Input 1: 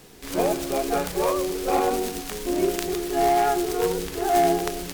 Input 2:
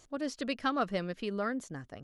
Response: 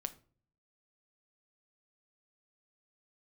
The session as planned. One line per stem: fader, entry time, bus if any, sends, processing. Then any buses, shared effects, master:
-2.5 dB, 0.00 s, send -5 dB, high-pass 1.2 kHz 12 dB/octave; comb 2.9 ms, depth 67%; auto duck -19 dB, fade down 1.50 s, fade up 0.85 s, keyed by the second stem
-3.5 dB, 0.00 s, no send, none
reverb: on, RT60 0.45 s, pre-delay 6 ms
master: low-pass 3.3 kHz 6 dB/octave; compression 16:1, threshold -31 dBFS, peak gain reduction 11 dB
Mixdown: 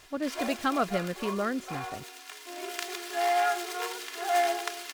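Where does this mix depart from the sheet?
stem 2 -3.5 dB -> +3.5 dB; master: missing compression 16:1, threshold -31 dBFS, peak gain reduction 11 dB

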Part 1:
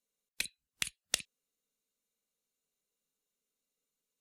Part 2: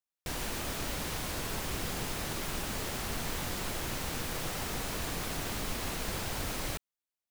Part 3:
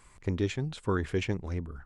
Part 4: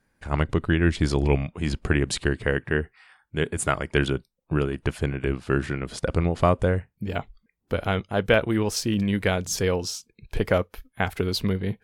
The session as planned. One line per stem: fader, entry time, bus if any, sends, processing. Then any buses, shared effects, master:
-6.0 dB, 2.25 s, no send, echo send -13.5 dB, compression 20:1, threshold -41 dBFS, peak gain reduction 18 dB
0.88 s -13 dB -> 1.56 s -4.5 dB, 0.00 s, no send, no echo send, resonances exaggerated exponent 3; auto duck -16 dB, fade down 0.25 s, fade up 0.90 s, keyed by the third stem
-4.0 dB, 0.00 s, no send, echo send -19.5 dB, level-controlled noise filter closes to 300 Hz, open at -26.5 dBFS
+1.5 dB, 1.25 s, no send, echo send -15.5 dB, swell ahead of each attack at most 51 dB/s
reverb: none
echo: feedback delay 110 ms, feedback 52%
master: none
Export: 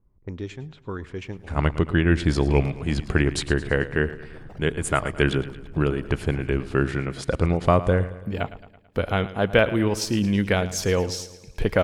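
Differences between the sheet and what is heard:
stem 1 -6.0 dB -> -13.0 dB; stem 4: missing swell ahead of each attack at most 51 dB/s; master: extra treble shelf 6.6 kHz -4.5 dB

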